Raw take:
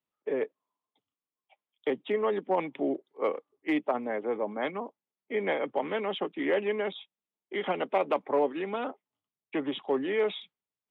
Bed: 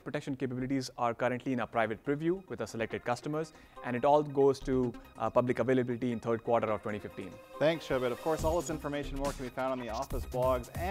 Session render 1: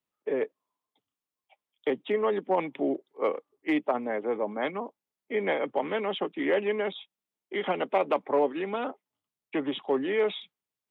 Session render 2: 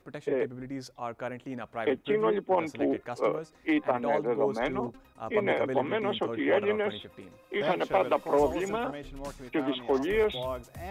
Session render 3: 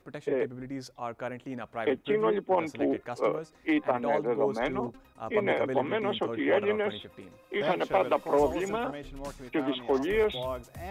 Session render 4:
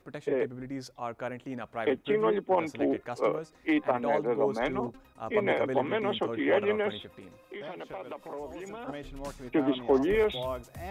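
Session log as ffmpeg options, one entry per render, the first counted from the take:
-af "volume=1.19"
-filter_complex "[1:a]volume=0.562[s0];[0:a][s0]amix=inputs=2:normalize=0"
-af anull
-filter_complex "[0:a]asplit=3[s0][s1][s2];[s0]afade=t=out:st=7.11:d=0.02[s3];[s1]acompressor=threshold=0.00891:ratio=3:attack=3.2:release=140:knee=1:detection=peak,afade=t=in:st=7.11:d=0.02,afade=t=out:st=8.87:d=0.02[s4];[s2]afade=t=in:st=8.87:d=0.02[s5];[s3][s4][s5]amix=inputs=3:normalize=0,asettb=1/sr,asplit=3[s6][s7][s8];[s6]atrim=end=9.444[s9];[s7]atrim=start=9.44:end=10.15,asetpts=PTS-STARTPTS,afade=t=in:d=0.004:c=qsin,afade=t=out:st=0.706:d=0.004:c=qsin,tiltshelf=f=1100:g=4[s10];[s8]atrim=start=10.146[s11];[s9][s10]acrossfade=d=0.004:c1=hsin:c2=qsin[s12];[s12][s11]acrossfade=d=0.004:c1=qsin:c2=hsin"

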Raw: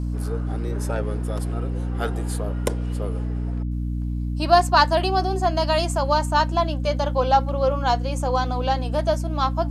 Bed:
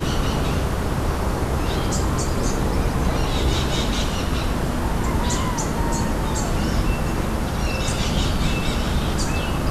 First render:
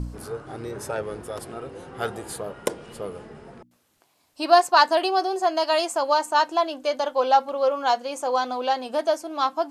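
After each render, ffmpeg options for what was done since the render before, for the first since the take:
-af "bandreject=f=60:t=h:w=4,bandreject=f=120:t=h:w=4,bandreject=f=180:t=h:w=4,bandreject=f=240:t=h:w=4,bandreject=f=300:t=h:w=4"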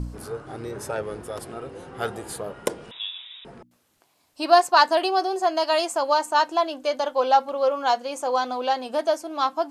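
-filter_complex "[0:a]asettb=1/sr,asplit=3[s0][s1][s2];[s0]atrim=end=2.914[s3];[s1]atrim=start=2.91:end=3.45,asetpts=PTS-STARTPTS,afade=t=in:d=0.004:c=qsin,afade=t=out:st=0.536:d=0.004:c=qsin,lowpass=f=3300:t=q:w=0.5098,lowpass=f=3300:t=q:w=0.6013,lowpass=f=3300:t=q:w=0.9,lowpass=f=3300:t=q:w=2.563,afreqshift=-3900[s4];[s2]atrim=start=3.446[s5];[s3][s4]acrossfade=d=0.004:c1=hsin:c2=qsin[s6];[s6][s5]acrossfade=d=0.004:c1=qsin:c2=hsin"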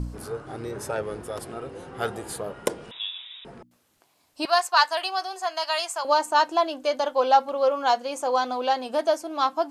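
-filter_complex "[0:a]asettb=1/sr,asplit=3[s0][s1][s2];[s0]atrim=end=4.454[s3];[s1]atrim=start=4.45:end=6.05,asetpts=PTS-STARTPTS,afade=t=in:d=0.004:c=qsin,afade=t=out:st=1.596:d=0.004:c=qsin,highpass=1000[s4];[s2]atrim=start=6.046[s5];[s3][s4]acrossfade=d=0.004:c1=hsin:c2=qsin[s6];[s6][s5]acrossfade=d=0.004:c1=qsin:c2=hsin"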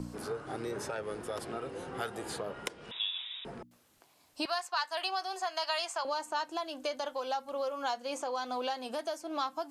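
-filter_complex "[0:a]acrossover=split=150|6500[s0][s1][s2];[s0]acompressor=threshold=0.00224:ratio=4[s3];[s1]acompressor=threshold=0.0316:ratio=4[s4];[s2]acompressor=threshold=0.002:ratio=4[s5];[s3][s4][s5]amix=inputs=3:normalize=0,acrossover=split=1200[s6][s7];[s6]alimiter=level_in=1.68:limit=0.0631:level=0:latency=1:release=397,volume=0.596[s8];[s8][s7]amix=inputs=2:normalize=0"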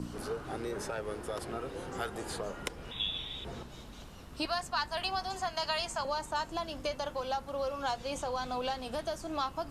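-filter_complex "[1:a]volume=0.0447[s0];[0:a][s0]amix=inputs=2:normalize=0"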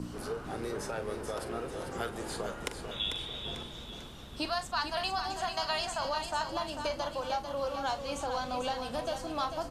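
-filter_complex "[0:a]asplit=2[s0][s1];[s1]adelay=43,volume=0.251[s2];[s0][s2]amix=inputs=2:normalize=0,aecho=1:1:445|890|1335|1780|2225:0.422|0.186|0.0816|0.0359|0.0158"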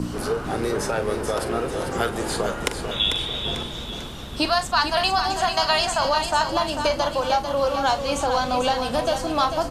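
-af "volume=3.98"

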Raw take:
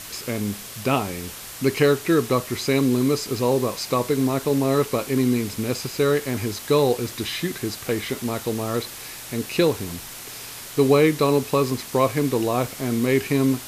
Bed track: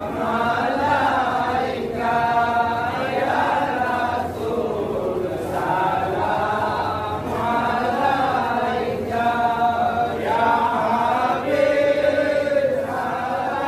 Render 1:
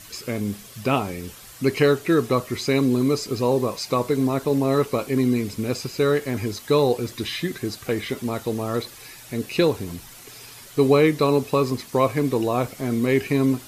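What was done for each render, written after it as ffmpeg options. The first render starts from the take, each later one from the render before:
-af "afftdn=nr=9:nf=-38"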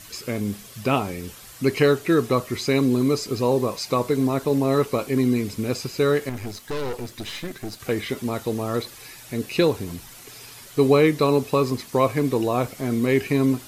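-filter_complex "[0:a]asettb=1/sr,asplit=3[s0][s1][s2];[s0]atrim=end=6.294[s3];[s1]atrim=start=6.29:end=7.8,asetpts=PTS-STARTPTS,afade=t=in:d=0.004:c=qsin,afade=t=out:st=1.506:d=0.004:c=qsin,aeval=exprs='(tanh(20*val(0)+0.75)-tanh(0.75))/20':c=same[s4];[s2]atrim=start=7.796[s5];[s3][s4]acrossfade=d=0.004:c1=hsin:c2=qsin[s6];[s6][s5]acrossfade=d=0.004:c1=qsin:c2=hsin"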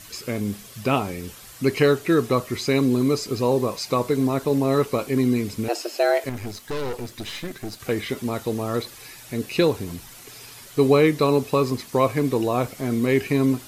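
-filter_complex "[0:a]asettb=1/sr,asplit=3[s0][s1][s2];[s0]atrim=end=5.684[s3];[s1]atrim=start=5.68:end=6.24,asetpts=PTS-STARTPTS,afade=t=in:d=0.004:c=qsin,afade=t=out:st=0.556:d=0.004:c=qsin,afreqshift=220[s4];[s2]atrim=start=6.236[s5];[s3][s4]acrossfade=d=0.004:c1=hsin:c2=qsin[s6];[s6][s5]acrossfade=d=0.004:c1=qsin:c2=hsin"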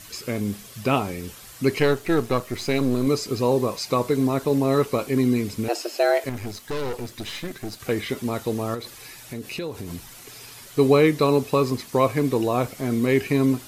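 -filter_complex "[0:a]asettb=1/sr,asplit=3[s0][s1][s2];[s0]atrim=end=1.794[s3];[s1]atrim=start=1.79:end=3.07,asetpts=PTS-STARTPTS,afade=t=in:d=0.004:c=qsin,afade=t=out:st=1.276:d=0.004:c=qsin,aeval=exprs='if(lt(val(0),0),0.447*val(0),val(0))':c=same[s4];[s2]atrim=start=3.066[s5];[s3][s4]acrossfade=d=0.004:c1=hsin:c2=qsin[s6];[s6][s5]acrossfade=d=0.004:c1=qsin:c2=hsin,asettb=1/sr,asplit=3[s7][s8][s9];[s7]atrim=end=8.744[s10];[s8]atrim=start=8.74:end=9.91,asetpts=PTS-STARTPTS,afade=t=in:d=0.004:c=qsin,afade=t=out:st=1.166:d=0.004:c=qsin,acompressor=threshold=0.0355:ratio=4:attack=3.2:release=140:knee=1:detection=peak[s11];[s9]atrim=start=9.906[s12];[s10][s11]acrossfade=d=0.004:c1=hsin:c2=qsin[s13];[s13][s12]acrossfade=d=0.004:c1=qsin:c2=hsin"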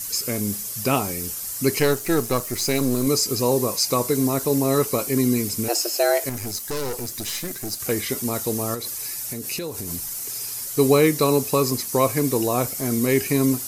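-af "aexciter=amount=2.8:drive=8.7:freq=4900"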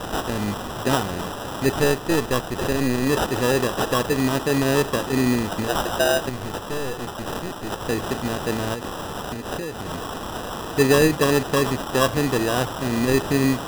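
-af "acrusher=samples=20:mix=1:aa=0.000001"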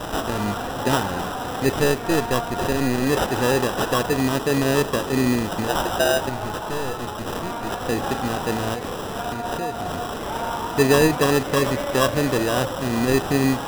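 -filter_complex "[1:a]volume=0.282[s0];[0:a][s0]amix=inputs=2:normalize=0"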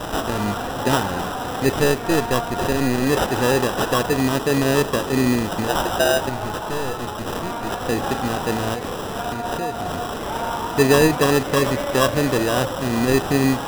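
-af "volume=1.19"

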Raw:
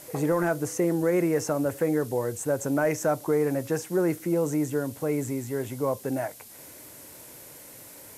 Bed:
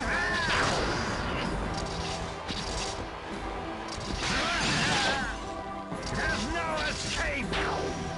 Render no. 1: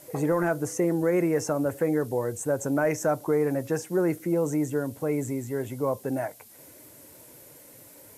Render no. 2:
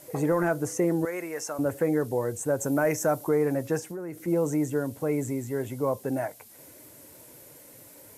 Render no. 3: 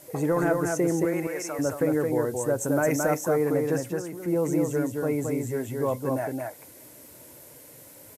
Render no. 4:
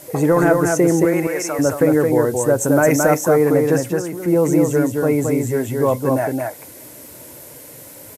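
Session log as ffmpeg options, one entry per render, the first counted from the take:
-af "afftdn=nr=6:nf=-47"
-filter_complex "[0:a]asettb=1/sr,asplit=3[s0][s1][s2];[s0]atrim=end=1.054[s3];[s1]atrim=start=1.05:end=1.59,asetpts=PTS-STARTPTS,afade=t=in:d=0.004:c=qsin,afade=t=out:st=0.536:d=0.004:c=qsin,highpass=f=1300:p=1[s4];[s2]atrim=start=1.586[s5];[s3][s4]acrossfade=d=0.004:c1=hsin:c2=qsin[s6];[s6][s5]acrossfade=d=0.004:c1=qsin:c2=hsin,asettb=1/sr,asplit=3[s7][s8][s9];[s7]atrim=end=2.604[s10];[s8]atrim=start=2.6:end=3.29,asetpts=PTS-STARTPTS,afade=t=in:d=0.004:c=qsin,afade=t=out:st=0.686:d=0.004:c=qsin,highshelf=f=9500:g=8.5[s11];[s9]atrim=start=3.286[s12];[s10][s11]acrossfade=d=0.004:c1=hsin:c2=qsin[s13];[s13][s12]acrossfade=d=0.004:c1=qsin:c2=hsin,asplit=3[s14][s15][s16];[s14]afade=t=out:st=3.79:d=0.02[s17];[s15]acompressor=threshold=0.0224:ratio=6:attack=3.2:release=140:knee=1:detection=peak,afade=t=in:st=3.79:d=0.02,afade=t=out:st=4.26:d=0.02[s18];[s16]afade=t=in:st=4.26:d=0.02[s19];[s17][s18][s19]amix=inputs=3:normalize=0"
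-af "aecho=1:1:220:0.668"
-af "volume=2.99"

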